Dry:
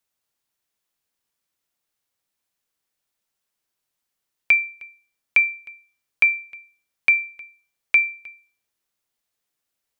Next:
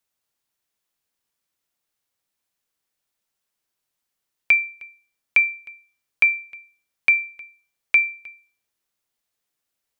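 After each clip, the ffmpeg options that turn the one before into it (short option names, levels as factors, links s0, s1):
-af anull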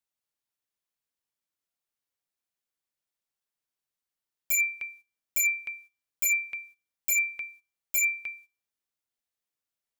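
-af "agate=range=0.2:threshold=0.002:ratio=16:detection=peak,aeval=exprs='0.0668*(abs(mod(val(0)/0.0668+3,4)-2)-1)':c=same,volume=1.58"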